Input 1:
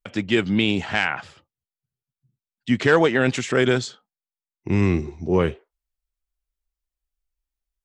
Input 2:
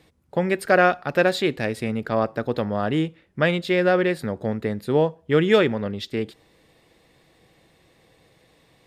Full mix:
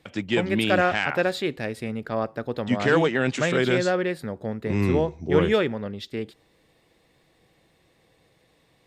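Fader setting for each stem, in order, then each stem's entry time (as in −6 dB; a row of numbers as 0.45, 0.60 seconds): −4.0, −4.5 decibels; 0.00, 0.00 seconds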